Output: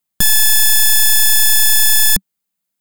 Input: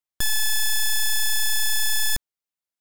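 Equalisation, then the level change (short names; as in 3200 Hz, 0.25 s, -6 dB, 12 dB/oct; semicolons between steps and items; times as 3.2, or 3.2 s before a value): bell 190 Hz +13.5 dB 0.66 oct; high shelf 8400 Hz +8.5 dB; notch 5600 Hz, Q 13; +8.0 dB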